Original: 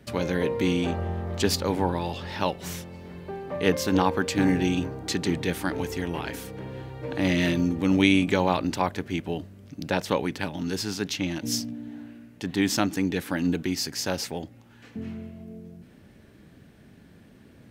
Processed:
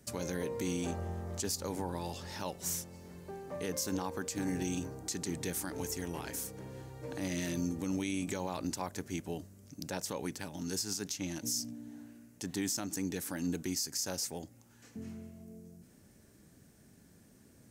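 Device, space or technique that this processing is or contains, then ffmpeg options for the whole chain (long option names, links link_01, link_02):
over-bright horn tweeter: -af "highshelf=frequency=4700:width_type=q:width=1.5:gain=12,alimiter=limit=-15.5dB:level=0:latency=1:release=118,volume=-9dB"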